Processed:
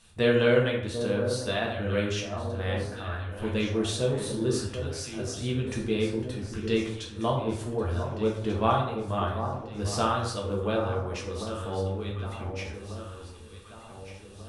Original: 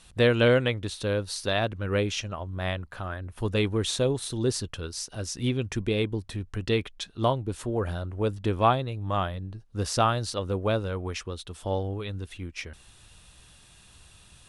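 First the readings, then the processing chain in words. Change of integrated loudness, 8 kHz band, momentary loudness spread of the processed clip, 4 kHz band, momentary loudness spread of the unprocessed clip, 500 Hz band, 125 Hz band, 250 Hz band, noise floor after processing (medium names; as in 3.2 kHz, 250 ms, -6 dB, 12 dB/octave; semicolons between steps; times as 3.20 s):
-0.5 dB, -2.5 dB, 13 LU, -2.5 dB, 12 LU, 0.0 dB, -1.5 dB, +0.5 dB, -46 dBFS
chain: echo whose repeats swap between lows and highs 745 ms, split 1.2 kHz, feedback 67%, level -8.5 dB; plate-style reverb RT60 0.74 s, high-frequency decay 0.55×, DRR -2 dB; trim -6 dB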